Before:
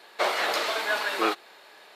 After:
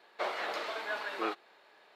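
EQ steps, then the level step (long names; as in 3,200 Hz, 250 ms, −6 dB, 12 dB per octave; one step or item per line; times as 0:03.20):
parametric band 12,000 Hz −12.5 dB 1.9 octaves
−8.5 dB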